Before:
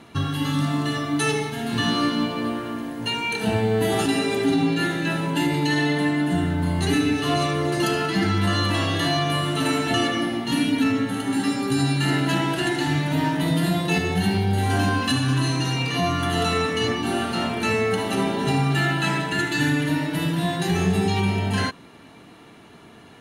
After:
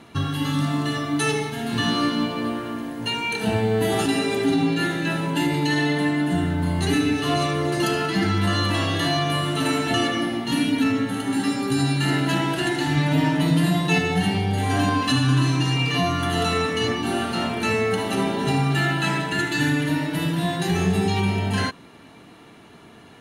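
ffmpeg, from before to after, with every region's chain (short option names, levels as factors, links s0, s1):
-filter_complex "[0:a]asettb=1/sr,asplit=3[s0][s1][s2];[s0]atrim=end=12.964[s3];[s1]atrim=start=12.96:end=16.03,asetpts=PTS-STARTPTS,afade=t=in:d=0.004:c=qsin,afade=t=out:st=3.066:d=0.004:c=qsin,lowpass=11000,aecho=1:1:6.8:0.54,atrim=end_sample=135387,aeval=exprs='sgn(val(0))*max(abs(val(0))-0.00355,0)':c=same[s4];[s2]atrim=start=16.026[s5];[s3][s4]acrossfade=d=0.004:c1=hsin:c2=qsin[s6];[s6][s5]acrossfade=d=0.004:c1=qsin:c2=hsin"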